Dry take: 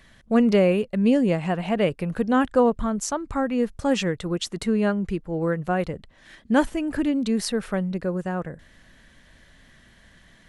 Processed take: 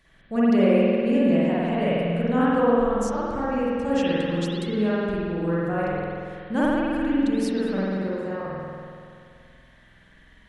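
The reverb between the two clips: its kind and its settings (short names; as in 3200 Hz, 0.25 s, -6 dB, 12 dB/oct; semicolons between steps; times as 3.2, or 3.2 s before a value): spring tank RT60 2.3 s, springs 47 ms, chirp 75 ms, DRR -9 dB; gain -9.5 dB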